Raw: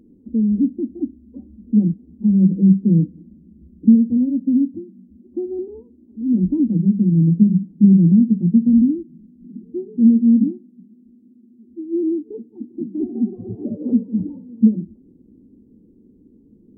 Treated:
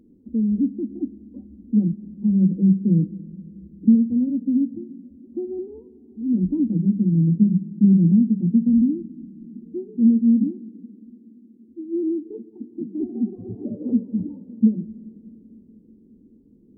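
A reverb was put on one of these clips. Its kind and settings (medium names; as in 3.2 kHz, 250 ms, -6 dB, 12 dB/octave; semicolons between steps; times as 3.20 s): algorithmic reverb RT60 4.1 s, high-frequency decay 0.95×, pre-delay 50 ms, DRR 17 dB; trim -3.5 dB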